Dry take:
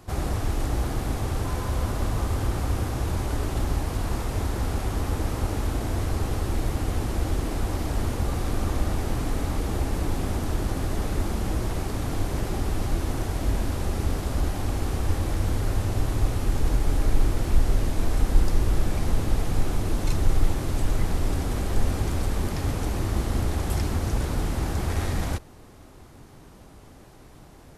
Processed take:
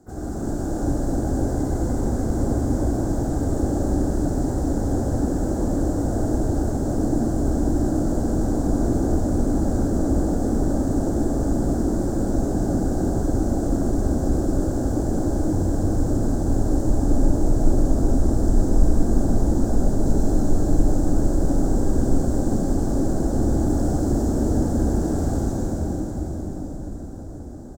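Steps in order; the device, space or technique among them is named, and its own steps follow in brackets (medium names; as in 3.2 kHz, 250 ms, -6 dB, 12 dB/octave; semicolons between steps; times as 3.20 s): FFT filter 120 Hz 0 dB, 290 Hz +12 dB, 500 Hz +2 dB, 790 Hz +3 dB, 1.4 kHz -28 dB, 2.7 kHz -20 dB, 7.6 kHz +6 dB, 13 kHz -19 dB; delay 77 ms -14.5 dB; shimmer-style reverb (harmony voices +12 st -10 dB; reverberation RT60 6.2 s, pre-delay 81 ms, DRR -7 dB); trim -8 dB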